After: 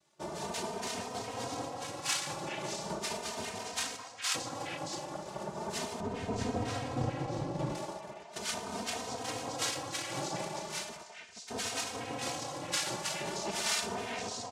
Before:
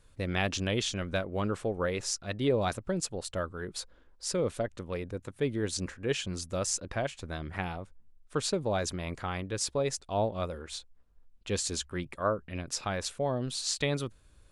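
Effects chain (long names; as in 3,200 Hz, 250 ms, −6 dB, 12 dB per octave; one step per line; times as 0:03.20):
rectangular room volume 390 cubic metres, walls mixed, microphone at 1.4 metres
in parallel at −7 dB: bit reduction 6 bits
on the sum: downward compressor, threshold −27 dBFS, peak gain reduction 10.5 dB
parametric band 5,000 Hz +14.5 dB 0.29 octaves
phaser with its sweep stopped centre 1,000 Hz, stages 4
cochlear-implant simulation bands 2
0:06.00–0:07.75: spectral tilt −4 dB per octave
on a send: echo through a band-pass that steps 208 ms, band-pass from 800 Hz, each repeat 1.4 octaves, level −1.5 dB
on the sum: barber-pole flanger 3 ms +0.38 Hz
level −2 dB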